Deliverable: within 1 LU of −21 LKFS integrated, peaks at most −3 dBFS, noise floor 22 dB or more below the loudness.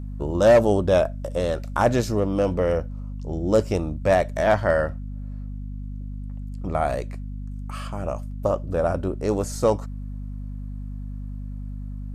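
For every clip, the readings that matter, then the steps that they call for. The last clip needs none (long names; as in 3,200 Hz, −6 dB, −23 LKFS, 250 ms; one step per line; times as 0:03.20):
mains hum 50 Hz; hum harmonics up to 250 Hz; level of the hum −30 dBFS; integrated loudness −23.0 LKFS; sample peak −8.0 dBFS; target loudness −21.0 LKFS
→ mains-hum notches 50/100/150/200/250 Hz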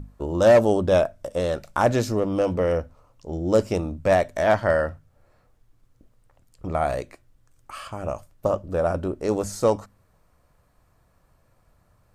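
mains hum none found; integrated loudness −23.0 LKFS; sample peak −7.5 dBFS; target loudness −21.0 LKFS
→ level +2 dB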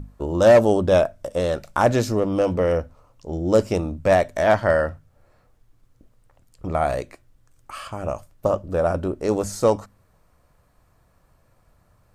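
integrated loudness −21.0 LKFS; sample peak −5.5 dBFS; background noise floor −61 dBFS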